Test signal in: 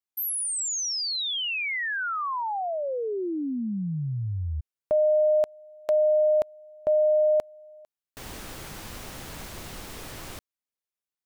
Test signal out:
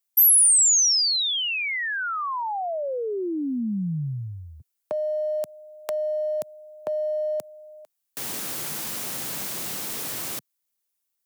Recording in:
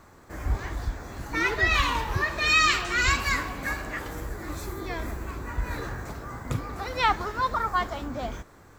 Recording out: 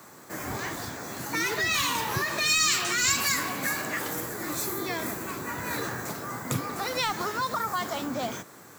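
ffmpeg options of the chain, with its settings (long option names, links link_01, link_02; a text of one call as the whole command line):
ffmpeg -i in.wav -filter_complex "[0:a]crystalizer=i=2:c=0,highpass=frequency=130:width=0.5412,highpass=frequency=130:width=1.3066,asplit=2[link_01][link_02];[link_02]volume=18dB,asoftclip=hard,volume=-18dB,volume=-7.5dB[link_03];[link_01][link_03]amix=inputs=2:normalize=0,acrossover=split=210|4900[link_04][link_05][link_06];[link_05]acompressor=threshold=-26dB:ratio=5:attack=3.7:release=136:knee=2.83:detection=peak[link_07];[link_04][link_07][link_06]amix=inputs=3:normalize=0" out.wav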